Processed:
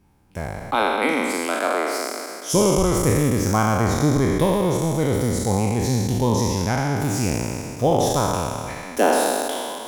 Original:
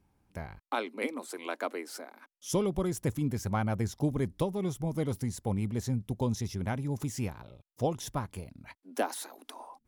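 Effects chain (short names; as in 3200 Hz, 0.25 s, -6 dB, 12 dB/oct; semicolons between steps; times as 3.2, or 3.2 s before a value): spectral trails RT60 2.43 s; gain +8 dB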